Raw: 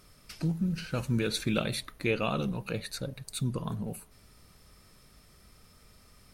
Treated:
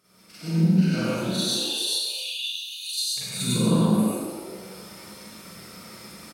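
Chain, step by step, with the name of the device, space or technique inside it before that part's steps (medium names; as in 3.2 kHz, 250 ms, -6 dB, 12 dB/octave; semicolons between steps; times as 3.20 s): 1.12–3.16 s: steep high-pass 2.9 kHz 96 dB/octave; frequency-shifting echo 132 ms, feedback 58%, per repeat +55 Hz, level -8.5 dB; Schroeder reverb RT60 0.65 s, combs from 33 ms, DRR -8 dB; far laptop microphone (reverberation RT60 0.55 s, pre-delay 89 ms, DRR -4.5 dB; high-pass 150 Hz 12 dB/octave; level rider gain up to 11 dB); trim -8.5 dB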